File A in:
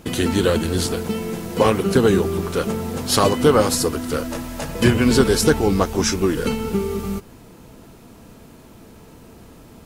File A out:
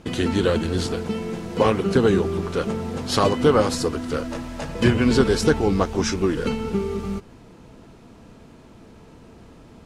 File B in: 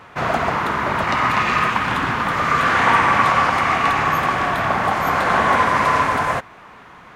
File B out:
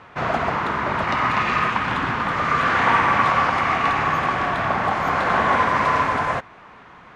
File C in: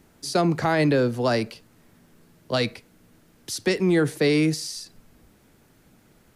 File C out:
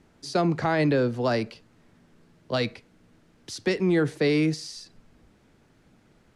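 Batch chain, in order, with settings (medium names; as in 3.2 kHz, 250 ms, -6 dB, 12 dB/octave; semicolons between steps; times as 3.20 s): distance through air 68 m; trim -2 dB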